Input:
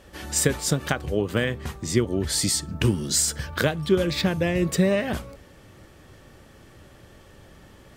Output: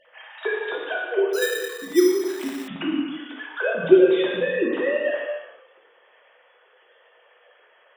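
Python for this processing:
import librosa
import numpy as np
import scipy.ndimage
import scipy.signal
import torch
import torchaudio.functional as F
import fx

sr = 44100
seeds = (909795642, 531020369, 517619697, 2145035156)

y = fx.sine_speech(x, sr)
y = fx.low_shelf(y, sr, hz=440.0, db=-7.0)
y = fx.rev_gated(y, sr, seeds[0], gate_ms=480, shape='falling', drr_db=-3.5)
y = fx.resample_bad(y, sr, factor=8, down='filtered', up='hold', at=(1.33, 2.68))
y = y * 10.0 ** (-1.0 / 20.0)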